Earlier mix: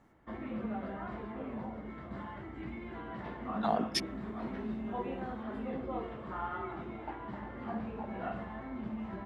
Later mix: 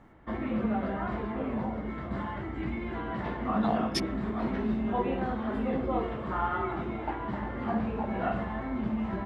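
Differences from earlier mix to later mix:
background +8.0 dB
master: add low-shelf EQ 65 Hz +5.5 dB

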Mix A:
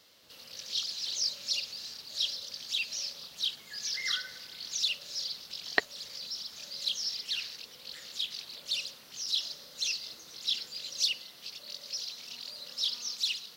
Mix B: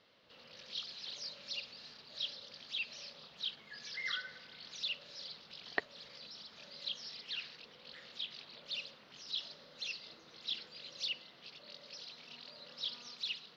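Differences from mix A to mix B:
speech −6.0 dB
master: add high-frequency loss of the air 310 metres

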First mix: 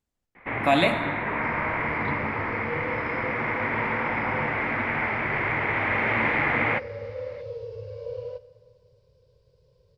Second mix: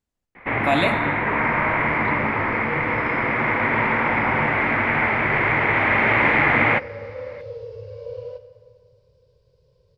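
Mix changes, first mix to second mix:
first sound +6.5 dB
second sound: send +6.0 dB

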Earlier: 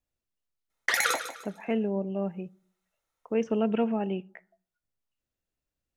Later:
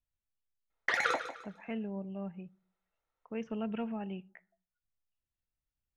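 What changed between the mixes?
speech: add parametric band 410 Hz −12.5 dB 2.5 octaves
master: add head-to-tape spacing loss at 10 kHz 23 dB

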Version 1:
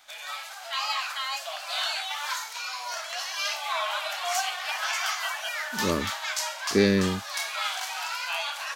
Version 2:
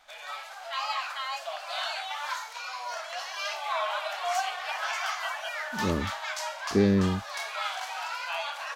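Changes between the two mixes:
speech −6.5 dB
master: add spectral tilt −3 dB per octave

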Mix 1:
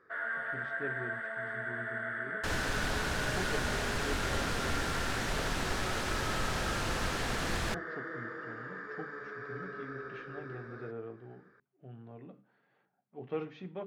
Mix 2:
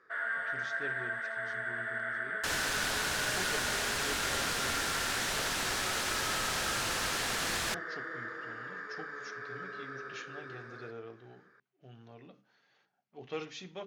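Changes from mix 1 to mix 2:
speech: remove band-pass filter 120–2,300 Hz
master: add spectral tilt +2.5 dB per octave

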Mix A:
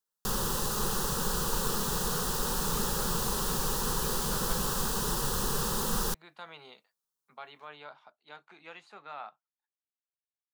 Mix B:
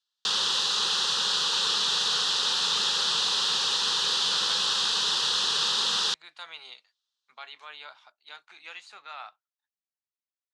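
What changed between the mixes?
background: add low-pass with resonance 3,600 Hz, resonance Q 2.8
master: add meter weighting curve ITU-R 468

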